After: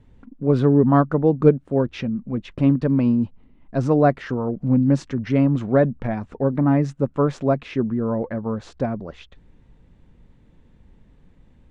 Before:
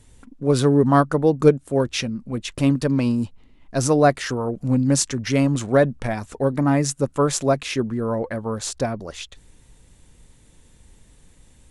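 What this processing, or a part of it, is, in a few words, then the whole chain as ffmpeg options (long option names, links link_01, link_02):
phone in a pocket: -af "lowpass=3300,equalizer=frequency=200:width_type=o:width=1:gain=5,highshelf=frequency=2300:gain=-10,volume=-1dB"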